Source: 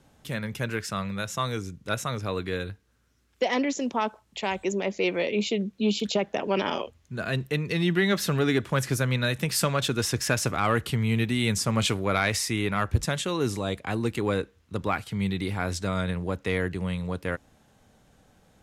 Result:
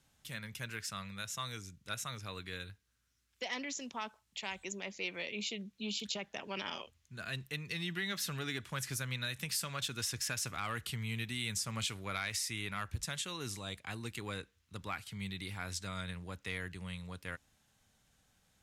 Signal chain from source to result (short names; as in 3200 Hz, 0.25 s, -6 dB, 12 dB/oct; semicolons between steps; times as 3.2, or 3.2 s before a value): passive tone stack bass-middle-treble 5-5-5; compressor, threshold -34 dBFS, peak gain reduction 6 dB; gain +1.5 dB